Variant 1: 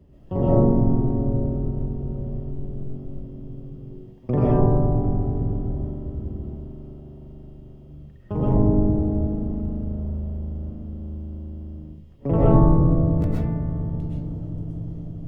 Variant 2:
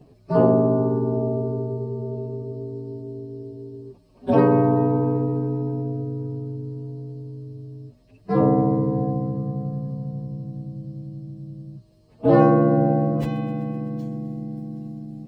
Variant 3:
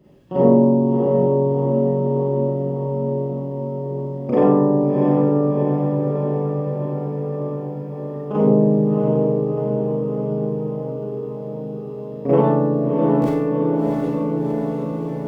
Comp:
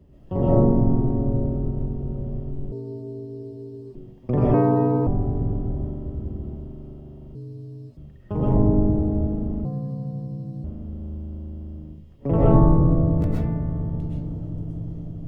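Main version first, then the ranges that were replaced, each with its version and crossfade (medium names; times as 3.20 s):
1
2.72–3.95 s: from 2
4.54–5.07 s: from 2
7.35–7.97 s: from 2
9.65–10.64 s: from 2
not used: 3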